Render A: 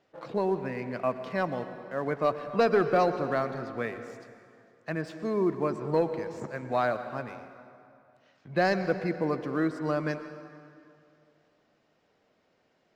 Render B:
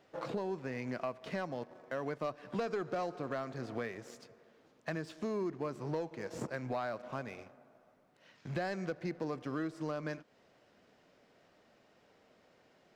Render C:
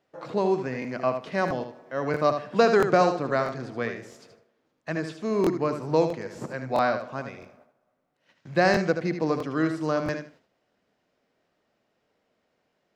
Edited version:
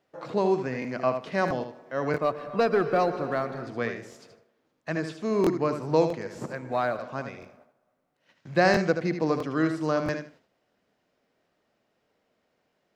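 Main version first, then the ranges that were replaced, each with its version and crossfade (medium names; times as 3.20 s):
C
2.18–3.67 s: from A
6.55–6.99 s: from A
not used: B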